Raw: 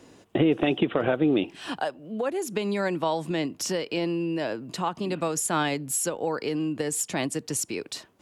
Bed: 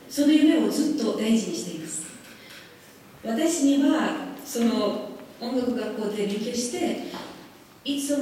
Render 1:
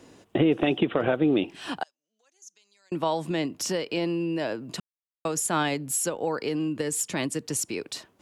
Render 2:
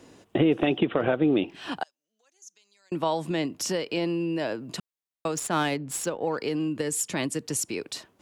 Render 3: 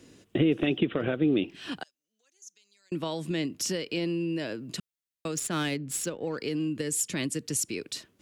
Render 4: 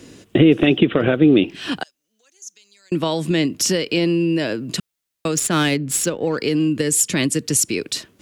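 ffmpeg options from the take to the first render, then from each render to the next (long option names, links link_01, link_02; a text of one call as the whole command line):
ffmpeg -i in.wav -filter_complex "[0:a]asettb=1/sr,asplit=3[link_01][link_02][link_03];[link_01]atrim=end=1.834[link_04];[link_02]atrim=start=1.83:end=2.92,asetpts=PTS-STARTPTS,afade=type=in:duration=0.004:curve=qsin,afade=type=out:start_time=1.086:duration=0.004:curve=qsin,bandpass=frequency=6200:width_type=q:width=11[link_05];[link_03]atrim=start=2.916[link_06];[link_04][link_05]acrossfade=duration=0.004:curve1=hsin:curve2=qsin[link_07];[link_07][link_06]acrossfade=duration=0.004:curve1=qsin:curve2=hsin,asettb=1/sr,asplit=3[link_08][link_09][link_10];[link_08]atrim=end=6.684[link_11];[link_09]atrim=start=6.68:end=7.47,asetpts=PTS-STARTPTS,afade=type=in:duration=0.004:curve=qsin,afade=type=out:start_time=0.786:duration=0.004:curve=qsin,equalizer=frequency=730:width_type=o:width=0.24:gain=-8.5[link_12];[link_10]atrim=start=7.466[link_13];[link_11][link_12]acrossfade=duration=0.004:curve1=hsin:curve2=qsin[link_14];[link_14][link_13]acrossfade=duration=0.004:curve1=qsin:curve2=hsin,asplit=3[link_15][link_16][link_17];[link_15]atrim=end=4.8,asetpts=PTS-STARTPTS,afade=type=out:start_time=4.796:duration=0.004:curve=hsin[link_18];[link_16]atrim=start=4.8:end=5.25,asetpts=PTS-STARTPTS,volume=0[link_19];[link_17]atrim=start=5.25,asetpts=PTS-STARTPTS,afade=type=in:duration=0.004:curve=hsin[link_20];[link_18][link_19][link_20]concat=n=3:v=0:a=1" out.wav
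ffmpeg -i in.wav -filter_complex "[0:a]asettb=1/sr,asplit=3[link_01][link_02][link_03];[link_01]atrim=end=0.664[link_04];[link_02]atrim=start=0.66:end=1.72,asetpts=PTS-STARTPTS,afade=type=in:duration=0.004:curve=qsin,afade=type=out:start_time=1.056:duration=0.004:curve=qsin,equalizer=frequency=9300:width_type=o:width=1.1:gain=-9[link_05];[link_03]atrim=start=1.716[link_06];[link_04][link_05]acrossfade=duration=0.004:curve1=hsin:curve2=qsin[link_07];[link_07][link_06]acrossfade=duration=0.004:curve1=qsin:curve2=hsin,asettb=1/sr,asplit=3[link_08][link_09][link_10];[link_08]atrim=end=5.364[link_11];[link_09]atrim=start=5.36:end=6.38,asetpts=PTS-STARTPTS,afade=type=in:duration=0.004:curve=qsin,afade=type=out:start_time=1.016:duration=0.004:curve=qsin,adynamicsmooth=sensitivity=5.5:basefreq=3700[link_12];[link_10]atrim=start=6.376[link_13];[link_11][link_12]acrossfade=duration=0.004:curve1=hsin:curve2=qsin[link_14];[link_14][link_13]acrossfade=duration=0.004:curve1=qsin:curve2=hsin" out.wav
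ffmpeg -i in.wav -af "equalizer=frequency=840:width=1.1:gain=-12" out.wav
ffmpeg -i in.wav -af "volume=11.5dB,alimiter=limit=-3dB:level=0:latency=1" out.wav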